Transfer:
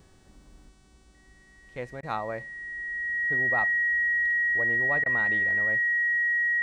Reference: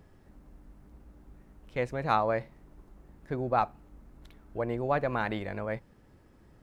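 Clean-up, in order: de-hum 376.5 Hz, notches 25; notch 1900 Hz, Q 30; interpolate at 2.01/5.04, 18 ms; gain 0 dB, from 0.69 s +5.5 dB

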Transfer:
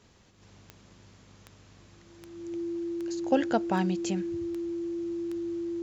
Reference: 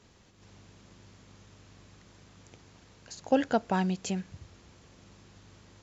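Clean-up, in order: de-click; notch 340 Hz, Q 30

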